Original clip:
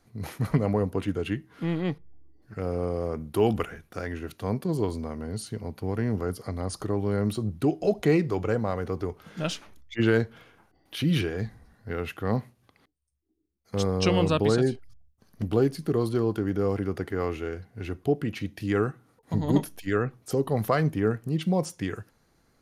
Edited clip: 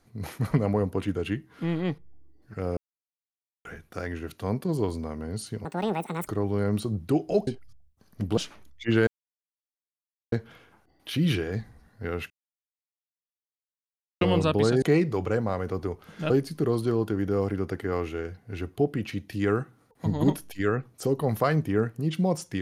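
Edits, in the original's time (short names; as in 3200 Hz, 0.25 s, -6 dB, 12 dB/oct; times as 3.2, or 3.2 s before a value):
2.77–3.65 mute
5.65–6.8 speed 185%
8–9.48 swap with 14.68–15.58
10.18 insert silence 1.25 s
12.16–14.07 mute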